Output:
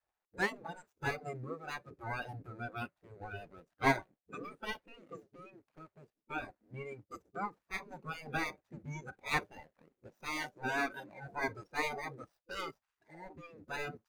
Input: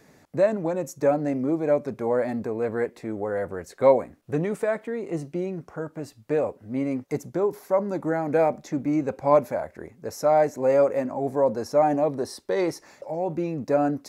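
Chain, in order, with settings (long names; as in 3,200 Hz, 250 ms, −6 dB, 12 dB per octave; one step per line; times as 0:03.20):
running median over 41 samples
noise reduction from a noise print of the clip's start 20 dB
gate on every frequency bin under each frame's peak −15 dB weak
level +1 dB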